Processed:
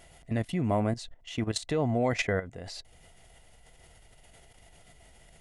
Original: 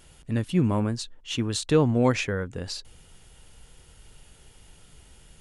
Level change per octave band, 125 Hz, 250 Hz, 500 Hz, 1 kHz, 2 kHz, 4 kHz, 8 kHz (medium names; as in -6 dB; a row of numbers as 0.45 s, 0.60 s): -5.5 dB, -6.0 dB, -4.0 dB, -1.5 dB, -1.5 dB, -5.5 dB, -6.0 dB